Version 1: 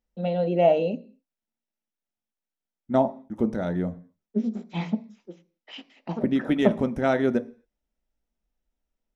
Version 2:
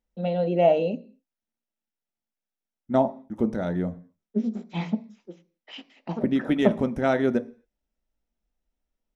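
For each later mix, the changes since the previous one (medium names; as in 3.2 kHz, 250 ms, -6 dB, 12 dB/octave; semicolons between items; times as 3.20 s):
no change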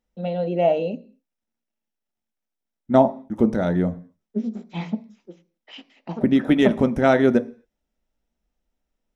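second voice +6.0 dB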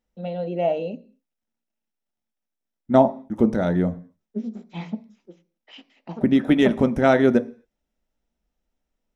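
first voice -3.5 dB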